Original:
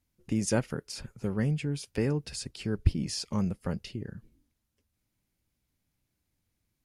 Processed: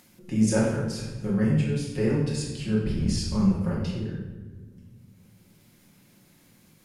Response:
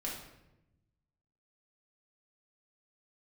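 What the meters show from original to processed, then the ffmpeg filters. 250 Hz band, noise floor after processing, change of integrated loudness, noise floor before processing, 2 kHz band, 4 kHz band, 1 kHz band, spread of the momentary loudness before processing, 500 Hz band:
+7.5 dB, -59 dBFS, +6.0 dB, -81 dBFS, +3.5 dB, +2.0 dB, +3.5 dB, 11 LU, +5.5 dB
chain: -filter_complex "[1:a]atrim=start_sample=2205,asetrate=32193,aresample=44100[s0];[0:a][s0]afir=irnorm=-1:irlink=0,acrossover=split=120[s1][s2];[s1]asoftclip=type=hard:threshold=0.0335[s3];[s2]acompressor=mode=upward:threshold=0.01:ratio=2.5[s4];[s3][s4]amix=inputs=2:normalize=0"

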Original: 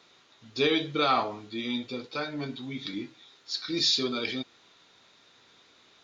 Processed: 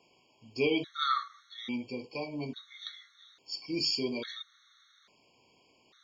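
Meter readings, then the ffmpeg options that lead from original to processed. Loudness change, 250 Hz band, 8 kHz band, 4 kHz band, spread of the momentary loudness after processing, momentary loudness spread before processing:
-5.0 dB, -4.0 dB, no reading, -6.0 dB, 15 LU, 13 LU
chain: -af "afftfilt=real='re*gt(sin(2*PI*0.59*pts/sr)*(1-2*mod(floor(b*sr/1024/1100),2)),0)':imag='im*gt(sin(2*PI*0.59*pts/sr)*(1-2*mod(floor(b*sr/1024/1100),2)),0)':win_size=1024:overlap=0.75,volume=0.75"

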